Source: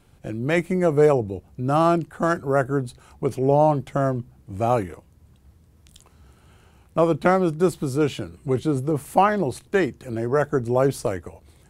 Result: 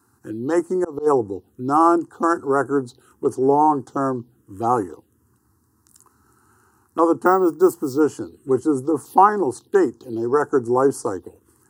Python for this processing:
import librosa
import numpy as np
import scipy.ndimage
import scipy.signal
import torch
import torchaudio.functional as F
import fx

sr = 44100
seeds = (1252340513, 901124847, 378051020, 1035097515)

y = scipy.signal.sosfilt(scipy.signal.butter(4, 120.0, 'highpass', fs=sr, output='sos'), x)
y = fx.dynamic_eq(y, sr, hz=910.0, q=1.1, threshold_db=-29.0, ratio=4.0, max_db=4)
y = fx.auto_swell(y, sr, attack_ms=233.0, at=(0.63, 1.06), fade=0.02)
y = fx.fixed_phaser(y, sr, hz=610.0, stages=6)
y = fx.env_phaser(y, sr, low_hz=560.0, high_hz=3700.0, full_db=-22.0)
y = fx.resample_bad(y, sr, factor=2, down='none', up='hold', at=(7.26, 8.0))
y = fx.dmg_crackle(y, sr, seeds[0], per_s=35.0, level_db=-49.0, at=(8.74, 9.47), fade=0.02)
y = y * librosa.db_to_amplitude(5.0)